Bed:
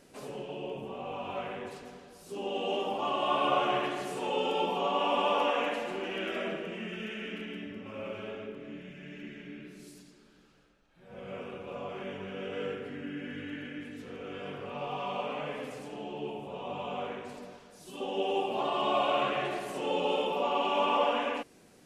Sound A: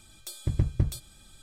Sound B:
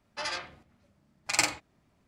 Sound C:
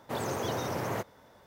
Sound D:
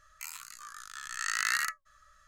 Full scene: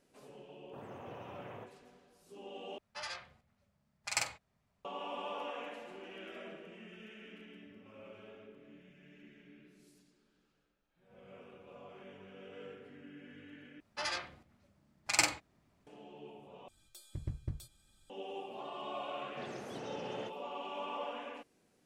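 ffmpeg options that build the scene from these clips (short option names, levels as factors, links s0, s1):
-filter_complex "[3:a]asplit=2[s0][s1];[2:a]asplit=2[s2][s3];[0:a]volume=0.211[s4];[s0]afwtdn=0.01[s5];[s2]equalizer=f=310:t=o:w=0.42:g=-14[s6];[s1]highpass=100,equalizer=f=100:t=q:w=4:g=-9,equalizer=f=220:t=q:w=4:g=5,equalizer=f=1000:t=q:w=4:g=-8,lowpass=f=6000:w=0.5412,lowpass=f=6000:w=1.3066[s7];[s4]asplit=4[s8][s9][s10][s11];[s8]atrim=end=2.784[s12];[s6]atrim=end=2.07,asetpts=PTS-STARTPTS,volume=0.376[s13];[s9]atrim=start=4.846:end=13.804[s14];[s3]atrim=end=2.07,asetpts=PTS-STARTPTS,volume=0.708[s15];[s10]atrim=start=15.866:end=16.684[s16];[1:a]atrim=end=1.42,asetpts=PTS-STARTPTS,volume=0.188[s17];[s11]atrim=start=18.096[s18];[s5]atrim=end=1.46,asetpts=PTS-STARTPTS,volume=0.15,afade=t=in:d=0.004:c=hsin,afade=t=out:st=1.456:d=0.004:c=hsin,adelay=630[s19];[s7]atrim=end=1.46,asetpts=PTS-STARTPTS,volume=0.237,afade=t=in:d=0.004:c=hsin,afade=t=out:st=1.456:d=0.004:c=hsin,adelay=19270[s20];[s12][s13]acrossfade=d=0.004:c1=hsin:c2=hsin[s21];[s21][s14]acrossfade=d=0.004:c1=hsin:c2=hsin[s22];[s22][s15]acrossfade=d=0.004:c1=hsin:c2=hsin[s23];[s23][s16]acrossfade=d=0.004:c1=hsin:c2=hsin[s24];[s24][s17]acrossfade=d=0.004:c1=hsin:c2=hsin[s25];[s25][s18]acrossfade=d=0.004:c1=hsin:c2=hsin[s26];[s26][s19][s20]amix=inputs=3:normalize=0"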